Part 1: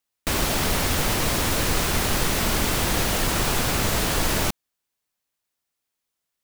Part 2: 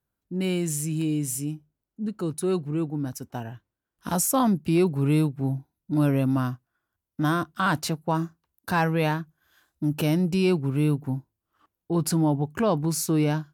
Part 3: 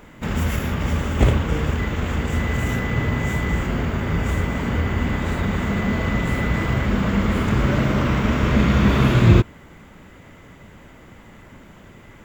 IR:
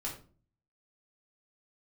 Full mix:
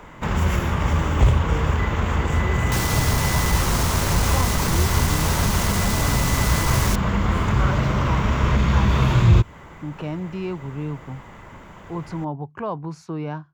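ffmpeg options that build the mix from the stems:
-filter_complex "[0:a]asoftclip=type=tanh:threshold=-18.5dB,adelay=2450,volume=-0.5dB[a];[1:a]lowpass=2.3k,volume=-4.5dB[b];[2:a]asoftclip=type=tanh:threshold=-4.5dB,highshelf=f=5k:g=-8,volume=2.5dB[c];[a][b][c]amix=inputs=3:normalize=0,acrossover=split=150|3000[d][e][f];[e]acompressor=threshold=-23dB:ratio=6[g];[d][g][f]amix=inputs=3:normalize=0,equalizer=f=250:t=o:w=0.67:g=-5,equalizer=f=1k:t=o:w=0.67:g=7,equalizer=f=6.3k:t=o:w=0.67:g=4"

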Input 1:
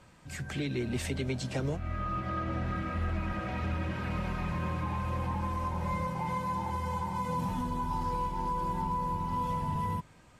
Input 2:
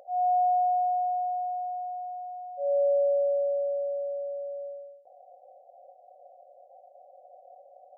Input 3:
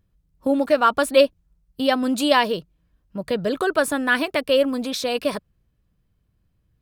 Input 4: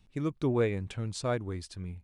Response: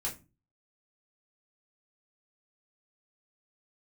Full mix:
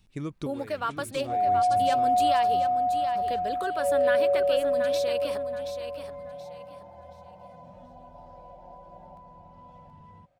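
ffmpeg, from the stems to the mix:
-filter_complex "[0:a]lowpass=4.8k,adelay=250,volume=-18.5dB[a];[1:a]acontrast=77,adelay=1200,volume=-5.5dB,asplit=2[b][c];[c]volume=-7dB[d];[2:a]alimiter=limit=-10dB:level=0:latency=1:release=158,highpass=f=450:p=1,volume=-9dB,asplit=3[e][f][g];[f]volume=-8.5dB[h];[3:a]highshelf=f=4.1k:g=5.5,acompressor=threshold=-29dB:ratio=6,volume=0dB,asplit=2[i][j];[j]volume=-9dB[k];[g]apad=whole_len=89681[l];[i][l]sidechaincompress=threshold=-38dB:ratio=8:attack=5.3:release=442[m];[d][h][k]amix=inputs=3:normalize=0,aecho=0:1:727|1454|2181|2908:1|0.28|0.0784|0.022[n];[a][b][e][m][n]amix=inputs=5:normalize=0"

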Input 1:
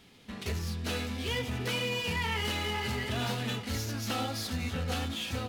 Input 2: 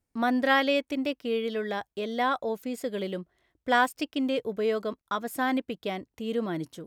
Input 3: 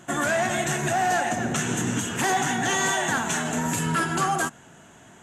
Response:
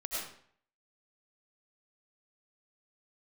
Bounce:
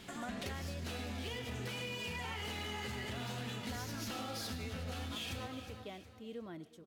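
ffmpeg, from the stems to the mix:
-filter_complex "[0:a]acompressor=threshold=-34dB:ratio=6,volume=2.5dB,asplit=3[a][b][c];[b]volume=-8.5dB[d];[c]volume=-15dB[e];[1:a]volume=-16dB,asplit=3[f][g][h];[g]volume=-22dB[i];[h]volume=-20dB[j];[2:a]acompressor=threshold=-33dB:ratio=3,volume=-13dB[k];[3:a]atrim=start_sample=2205[l];[d][i]amix=inputs=2:normalize=0[m];[m][l]afir=irnorm=-1:irlink=0[n];[e][j]amix=inputs=2:normalize=0,aecho=0:1:363|726|1089|1452|1815:1|0.37|0.137|0.0507|0.0187[o];[a][f][k][n][o]amix=inputs=5:normalize=0,acompressor=threshold=-39dB:ratio=6"

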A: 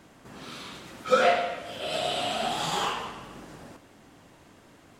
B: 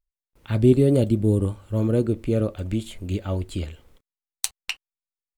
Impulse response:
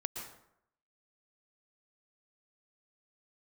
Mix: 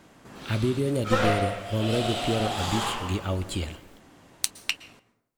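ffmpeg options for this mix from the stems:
-filter_complex "[0:a]aeval=exprs='clip(val(0),-1,0.0335)':c=same,volume=-2.5dB,asplit=2[a][b];[b]volume=-7.5dB[c];[1:a]tiltshelf=f=970:g=-4,acompressor=threshold=-24dB:ratio=6,volume=0.5dB,asplit=2[d][e];[e]volume=-13dB[f];[2:a]atrim=start_sample=2205[g];[c][f]amix=inputs=2:normalize=0[h];[h][g]afir=irnorm=-1:irlink=0[i];[a][d][i]amix=inputs=3:normalize=0"

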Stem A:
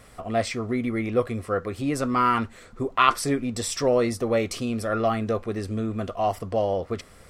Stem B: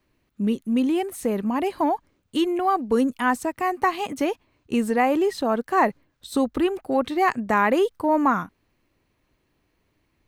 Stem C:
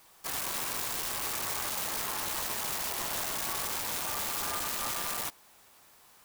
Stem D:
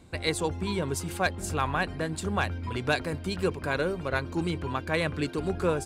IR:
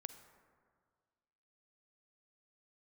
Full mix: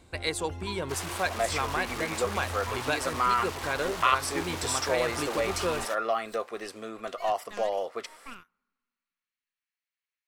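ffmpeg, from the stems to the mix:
-filter_complex "[0:a]highpass=610,adelay=1050,volume=0.5dB[a];[1:a]highpass=f=1.4k:w=0.5412,highpass=f=1.4k:w=1.3066,aeval=exprs='0.224*(cos(1*acos(clip(val(0)/0.224,-1,1)))-cos(1*PI/2))+0.0708*(cos(6*acos(clip(val(0)/0.224,-1,1)))-cos(6*PI/2))':c=same,volume=-18.5dB,asplit=2[b][c];[c]volume=-17.5dB[d];[2:a]highpass=470,aemphasis=mode=reproduction:type=bsi,adelay=650,volume=-1dB,asplit=2[e][f];[f]volume=-4dB[g];[3:a]equalizer=f=170:w=0.8:g=-8.5,volume=0.5dB[h];[4:a]atrim=start_sample=2205[i];[d][g]amix=inputs=2:normalize=0[j];[j][i]afir=irnorm=-1:irlink=0[k];[a][b][e][h][k]amix=inputs=5:normalize=0,acompressor=threshold=-27dB:ratio=1.5"

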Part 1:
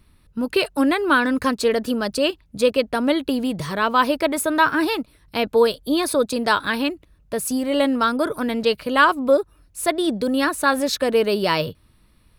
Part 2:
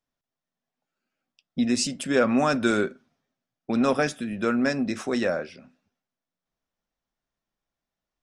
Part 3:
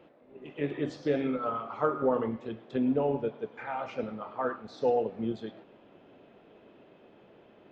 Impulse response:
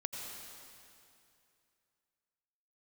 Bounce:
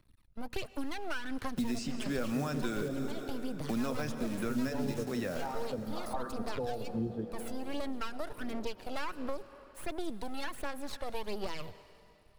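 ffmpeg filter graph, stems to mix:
-filter_complex "[0:a]aeval=exprs='max(val(0),0)':c=same,volume=-12dB,asplit=2[a][b];[b]volume=-15.5dB[c];[1:a]acrusher=bits=7:dc=4:mix=0:aa=0.000001,volume=-3.5dB,asplit=2[d][e];[e]volume=-6.5dB[f];[2:a]lowpass=1.3k,adelay=1750,volume=2dB,asplit=3[g][h][i];[g]atrim=end=3.07,asetpts=PTS-STARTPTS,afade=t=out:st=3.066:d=0.004:c=hsin[j];[h]atrim=start=3.07:end=3.89,asetpts=PTS-STARTPTS,volume=0[k];[i]atrim=start=3.89,asetpts=PTS-STARTPTS,afade=t=in:d=0.004:c=hsin[l];[j][k][l]concat=n=3:v=0:a=1,asplit=2[m][n];[n]volume=-7dB[o];[a][m]amix=inputs=2:normalize=0,aphaser=in_gain=1:out_gain=1:delay=1.5:decay=0.54:speed=1.4:type=sinusoidal,alimiter=limit=-18dB:level=0:latency=1:release=475,volume=0dB[p];[3:a]atrim=start_sample=2205[q];[c][f][o]amix=inputs=3:normalize=0[r];[r][q]afir=irnorm=-1:irlink=0[s];[d][p][s]amix=inputs=3:normalize=0,acrossover=split=170|3700[t][u][v];[t]acompressor=threshold=-35dB:ratio=4[w];[u]acompressor=threshold=-37dB:ratio=4[x];[v]acompressor=threshold=-50dB:ratio=4[y];[w][x][y]amix=inputs=3:normalize=0"

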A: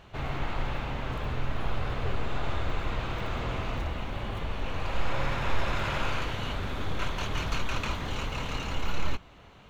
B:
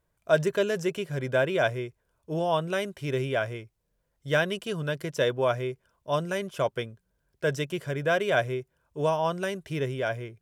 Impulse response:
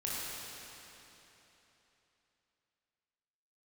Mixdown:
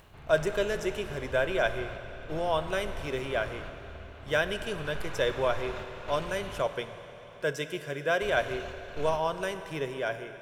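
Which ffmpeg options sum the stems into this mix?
-filter_complex "[0:a]volume=-13.5dB,asplit=3[a][b][c];[a]atrim=end=6.61,asetpts=PTS-STARTPTS,afade=t=out:st=6.606:d=0.004:c=hsin[d];[b]atrim=start=6.61:end=8.21,asetpts=PTS-STARTPTS,volume=0[e];[c]atrim=start=8.21,asetpts=PTS-STARTPTS,afade=t=in:d=0.004:c=hsin[f];[d][e][f]concat=n=3:v=0:a=1,asplit=2[g][h];[h]volume=-6.5dB[i];[1:a]highpass=f=320:p=1,volume=-3dB,asplit=3[j][k][l];[k]volume=-11.5dB[m];[l]apad=whole_len=427555[n];[g][n]sidechaingate=range=-33dB:threshold=-51dB:ratio=16:detection=peak[o];[2:a]atrim=start_sample=2205[p];[i][m]amix=inputs=2:normalize=0[q];[q][p]afir=irnorm=-1:irlink=0[r];[o][j][r]amix=inputs=3:normalize=0,acompressor=mode=upward:threshold=-43dB:ratio=2.5"

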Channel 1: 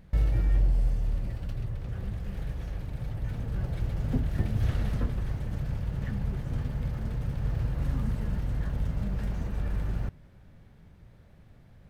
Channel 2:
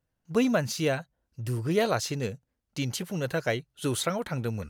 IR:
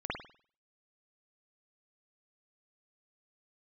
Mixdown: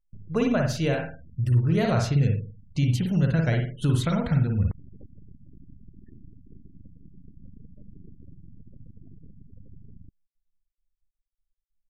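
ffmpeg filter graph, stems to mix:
-filter_complex "[0:a]acompressor=threshold=-26dB:ratio=8,aeval=exprs='abs(val(0))':c=same,aeval=exprs='0.0631*(cos(1*acos(clip(val(0)/0.0631,-1,1)))-cos(1*PI/2))+0.00794*(cos(3*acos(clip(val(0)/0.0631,-1,1)))-cos(3*PI/2))+0.00126*(cos(4*acos(clip(val(0)/0.0631,-1,1)))-cos(4*PI/2))+0.00251*(cos(5*acos(clip(val(0)/0.0631,-1,1)))-cos(5*PI/2))+0.000398*(cos(8*acos(clip(val(0)/0.0631,-1,1)))-cos(8*PI/2))':c=same,volume=-12.5dB[a];[1:a]asubboost=boost=8.5:cutoff=160,acompressor=threshold=-22dB:ratio=5,adynamicequalizer=threshold=0.00316:dfrequency=1100:dqfactor=2:tfrequency=1100:tqfactor=2:attack=5:release=100:ratio=0.375:range=2:mode=cutabove:tftype=bell,volume=-1dB,asplit=2[b][c];[c]volume=-3dB[d];[2:a]atrim=start_sample=2205[e];[d][e]afir=irnorm=-1:irlink=0[f];[a][b][f]amix=inputs=3:normalize=0,afftfilt=real='re*gte(hypot(re,im),0.00708)':imag='im*gte(hypot(re,im),0.00708)':win_size=1024:overlap=0.75,highshelf=f=5.2k:g=-8.5"

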